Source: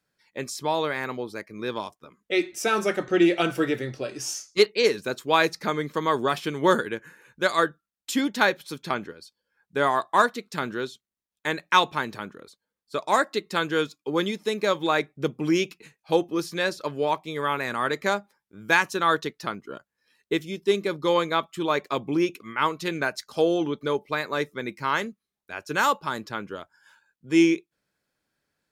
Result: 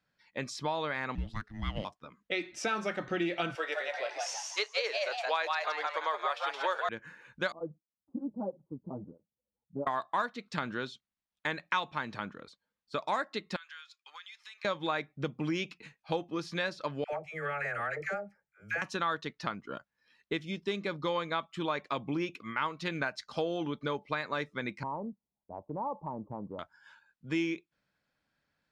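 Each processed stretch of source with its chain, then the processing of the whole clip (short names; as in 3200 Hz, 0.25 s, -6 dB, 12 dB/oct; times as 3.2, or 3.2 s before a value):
1.15–1.85 G.711 law mismatch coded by A + frequency shift -430 Hz
3.55–6.89 inverse Chebyshev high-pass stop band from 230 Hz + frequency-shifting echo 0.17 s, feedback 35%, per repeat +130 Hz, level -3 dB
7.52–9.87 Gaussian blur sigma 15 samples + tape flanging out of phase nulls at 1.5 Hz, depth 7.9 ms
13.56–14.65 HPF 1300 Hz 24 dB/oct + compressor, threshold -45 dBFS
17.04–18.82 fixed phaser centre 1000 Hz, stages 6 + compressor, threshold -26 dBFS + dispersion lows, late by 89 ms, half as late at 700 Hz
24.83–26.59 steep low-pass 1000 Hz 72 dB/oct + compressor 2:1, threshold -34 dBFS
whole clip: LPF 4400 Hz 12 dB/oct; bell 390 Hz -8 dB 0.59 oct; compressor 3:1, threshold -31 dBFS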